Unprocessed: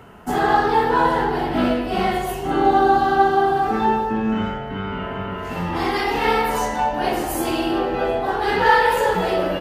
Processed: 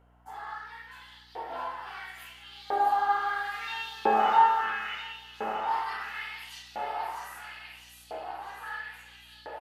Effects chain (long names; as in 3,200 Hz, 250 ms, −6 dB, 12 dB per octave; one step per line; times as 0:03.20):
source passing by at 0:04.04, 11 m/s, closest 2.7 metres
repeating echo 652 ms, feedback 53%, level −3 dB
auto-filter high-pass saw up 0.74 Hz 550–4,200 Hz
mains hum 60 Hz, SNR 29 dB